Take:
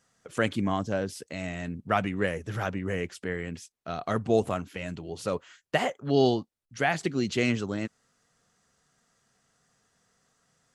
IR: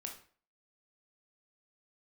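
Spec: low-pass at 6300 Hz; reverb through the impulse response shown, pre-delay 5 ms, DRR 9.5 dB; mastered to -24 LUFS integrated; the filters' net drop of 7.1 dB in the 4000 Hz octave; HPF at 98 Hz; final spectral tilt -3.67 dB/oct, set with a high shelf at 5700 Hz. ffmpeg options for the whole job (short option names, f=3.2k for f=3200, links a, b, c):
-filter_complex "[0:a]highpass=98,lowpass=6.3k,equalizer=f=4k:t=o:g=-8.5,highshelf=f=5.7k:g=-4.5,asplit=2[a][b];[1:a]atrim=start_sample=2205,adelay=5[c];[b][c]afir=irnorm=-1:irlink=0,volume=-7dB[d];[a][d]amix=inputs=2:normalize=0,volume=6dB"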